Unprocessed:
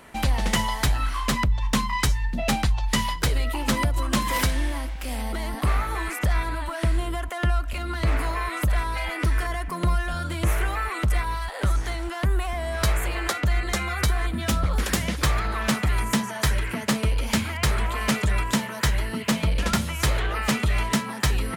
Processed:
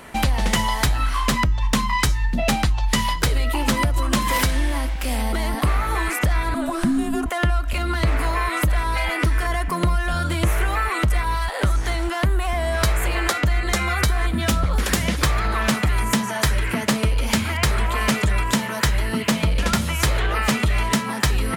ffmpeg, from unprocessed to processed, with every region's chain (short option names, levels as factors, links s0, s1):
-filter_complex "[0:a]asettb=1/sr,asplit=3[s0][s1][s2];[s0]atrim=end=6.544[s3];[s1]atrim=start=6.54:end=7.26,asetpts=PTS-STARTPTS,afade=t=in:d=0.004:c=qsin,afade=t=out:st=0.716:d=0.004:c=qsin,highpass=51,equalizer=f=2900:w=1.6:g=-6.5,afreqshift=-320[s4];[s2]atrim=start=7.256[s5];[s3][s4]acrossfade=d=0.004:c1=hsin:c2=qsin[s6];[s6][s5]acrossfade=d=0.004:c1=qsin:c2=hsin,acompressor=threshold=0.0631:ratio=3,bandreject=f=318.2:t=h:w=4,bandreject=f=636.4:t=h:w=4,bandreject=f=954.6:t=h:w=4,bandreject=f=1272.8:t=h:w=4,bandreject=f=1591:t=h:w=4,bandreject=f=1909.2:t=h:w=4,bandreject=f=2227.4:t=h:w=4,bandreject=f=2545.6:t=h:w=4,bandreject=f=2863.8:t=h:w=4,bandreject=f=3182:t=h:w=4,bandreject=f=3500.2:t=h:w=4,bandreject=f=3818.4:t=h:w=4,bandreject=f=4136.6:t=h:w=4,bandreject=f=4454.8:t=h:w=4,bandreject=f=4773:t=h:w=4,bandreject=f=5091.2:t=h:w=4,bandreject=f=5409.4:t=h:w=4,bandreject=f=5727.6:t=h:w=4,bandreject=f=6045.8:t=h:w=4,bandreject=f=6364:t=h:w=4,bandreject=f=6682.2:t=h:w=4,bandreject=f=7000.4:t=h:w=4,bandreject=f=7318.6:t=h:w=4,bandreject=f=7636.8:t=h:w=4,volume=2.24"